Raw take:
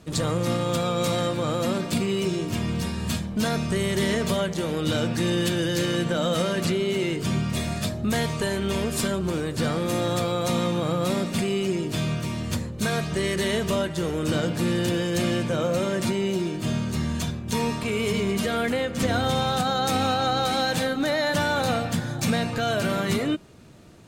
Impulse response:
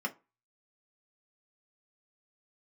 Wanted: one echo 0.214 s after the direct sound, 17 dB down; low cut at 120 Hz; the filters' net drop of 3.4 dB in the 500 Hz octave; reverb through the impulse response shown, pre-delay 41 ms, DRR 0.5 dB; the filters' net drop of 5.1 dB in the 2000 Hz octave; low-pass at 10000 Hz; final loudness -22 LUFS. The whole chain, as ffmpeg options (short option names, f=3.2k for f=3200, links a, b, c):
-filter_complex "[0:a]highpass=120,lowpass=10k,equalizer=f=500:t=o:g=-4,equalizer=f=2k:t=o:g=-6.5,aecho=1:1:214:0.141,asplit=2[a][b];[1:a]atrim=start_sample=2205,adelay=41[c];[b][c]afir=irnorm=-1:irlink=0,volume=-5dB[d];[a][d]amix=inputs=2:normalize=0,volume=4dB"